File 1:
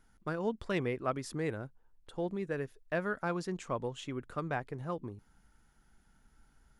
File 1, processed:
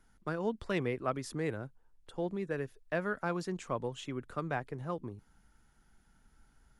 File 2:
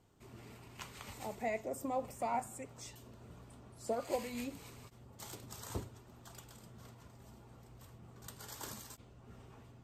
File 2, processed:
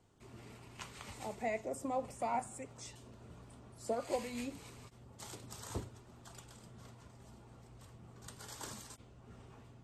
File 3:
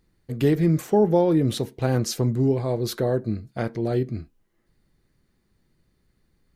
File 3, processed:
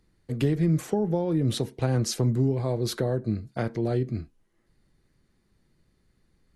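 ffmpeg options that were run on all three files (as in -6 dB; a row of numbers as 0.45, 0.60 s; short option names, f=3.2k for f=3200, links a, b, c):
-filter_complex "[0:a]acrossover=split=170[a][b];[b]acompressor=threshold=-24dB:ratio=10[c];[a][c]amix=inputs=2:normalize=0" -ar 32000 -c:a ac3 -b:a 64k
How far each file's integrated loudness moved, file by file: 0.0, 0.0, -3.5 LU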